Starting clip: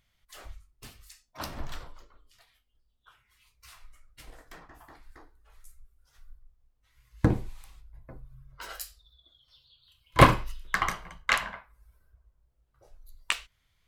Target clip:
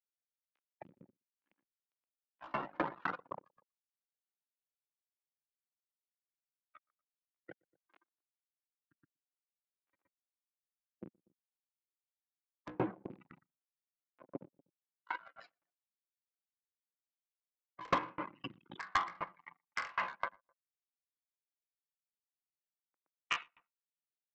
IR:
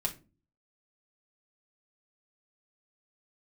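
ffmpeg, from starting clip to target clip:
-filter_complex "[0:a]atempo=0.57,bandreject=f=50:t=h:w=6,bandreject=f=100:t=h:w=6,bandreject=f=150:t=h:w=6,bandreject=f=200:t=h:w=6,bandreject=f=250:t=h:w=6,bandreject=f=300:t=h:w=6,bandreject=f=350:t=h:w=6,bandreject=f=400:t=h:w=6,asplit=2[s0][s1];[1:a]atrim=start_sample=2205,asetrate=43659,aresample=44100[s2];[s1][s2]afir=irnorm=-1:irlink=0,volume=0.188[s3];[s0][s3]amix=inputs=2:normalize=0,acrusher=bits=5:mix=0:aa=0.000001,afftdn=nr=22:nf=-39,highpass=f=220:w=0.5412,highpass=f=220:w=1.3066,equalizer=f=230:t=q:w=4:g=-9,equalizer=f=420:t=q:w=4:g=-7,equalizer=f=680:t=q:w=4:g=-4,equalizer=f=1800:t=q:w=4:g=-4,lowpass=f=2300:w=0.5412,lowpass=f=2300:w=1.3066,acompressor=threshold=0.0178:ratio=10,aresample=16000,asoftclip=type=tanh:threshold=0.0141,aresample=44100,asplit=2[s4][s5];[s5]adelay=120,lowpass=f=1000:p=1,volume=0.224,asplit=2[s6][s7];[s7]adelay=120,lowpass=f=1000:p=1,volume=0.17[s8];[s4][s6][s8]amix=inputs=3:normalize=0,aeval=exprs='val(0)*pow(10,-35*if(lt(mod(3.9*n/s,1),2*abs(3.9)/1000),1-mod(3.9*n/s,1)/(2*abs(3.9)/1000),(mod(3.9*n/s,1)-2*abs(3.9)/1000)/(1-2*abs(3.9)/1000))/20)':c=same,volume=6.31"

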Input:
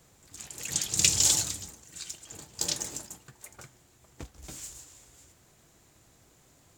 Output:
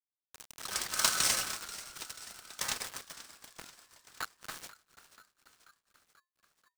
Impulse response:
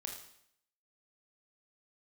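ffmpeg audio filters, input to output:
-filter_complex "[0:a]asettb=1/sr,asplit=3[s0][s1][s2];[s0]atrim=end=3.484[s3];[s1]atrim=start=3.48:end=4.58,asetpts=PTS-STARTPTS,afade=t=in:d=0.004:c=qsin,afade=t=out:st=1.096:d=0.004:c=qsin,aeval=exprs='val(0)+0.5*0.00944*sgn(val(0))':c=same[s4];[s2]atrim=start=4.576[s5];[s3][s4]acrossfade=d=0.004:c1=hsin:c2=qsin[s6];[s6][s5]acrossfade=d=0.004:c1=qsin:c2=hsin,acrusher=bits=5:mix=0:aa=0.000001,highshelf=f=5600:g=-11,asplit=2[s7][s8];[s8]asplit=6[s9][s10][s11][s12][s13][s14];[s9]adelay=486,afreqshift=-86,volume=0.158[s15];[s10]adelay=972,afreqshift=-172,volume=0.1[s16];[s11]adelay=1458,afreqshift=-258,volume=0.0631[s17];[s12]adelay=1944,afreqshift=-344,volume=0.0398[s18];[s13]adelay=2430,afreqshift=-430,volume=0.0248[s19];[s14]adelay=2916,afreqshift=-516,volume=0.0157[s20];[s15][s16][s17][s18][s19][s20]amix=inputs=6:normalize=0[s21];[s7][s21]amix=inputs=2:normalize=0,aeval=exprs='val(0)*sgn(sin(2*PI*1400*n/s))':c=same"

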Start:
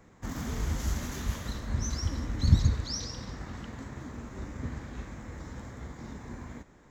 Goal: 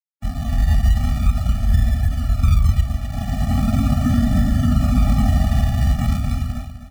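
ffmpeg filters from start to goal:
-filter_complex "[0:a]aemphasis=mode=reproduction:type=bsi,bandreject=f=65.76:t=h:w=4,bandreject=f=131.52:t=h:w=4,bandreject=f=197.28:t=h:w=4,bandreject=f=263.04:t=h:w=4,bandreject=f=328.8:t=h:w=4,acrusher=samples=37:mix=1:aa=0.000001:lfo=1:lforange=22.2:lforate=0.4,dynaudnorm=f=120:g=13:m=5.01,asettb=1/sr,asplit=3[s0][s1][s2];[s0]atrim=end=3.124[s3];[s1]atrim=start=3.12:end=5.45,asetpts=PTS-STARTPTS,afade=t=in:d=0.004:c=qsin,afade=t=out:st=2.326:d=0.004:c=qsin,equalizer=f=400:w=0.47:g=10.5[s4];[s2]atrim=start=5.446[s5];[s3][s4]acrossfade=d=0.004:c1=hsin:c2=qsin[s6];[s6][s5]acrossfade=d=0.004:c1=qsin:c2=hsin,acrusher=bits=5:mix=0:aa=0.000001,alimiter=limit=0.299:level=0:latency=1:release=78,aecho=1:1:255|510|765:0.316|0.0885|0.0248,afftfilt=real='re*eq(mod(floor(b*sr/1024/280),2),0)':imag='im*eq(mod(floor(b*sr/1024/280),2),0)':win_size=1024:overlap=0.75,volume=1.33"

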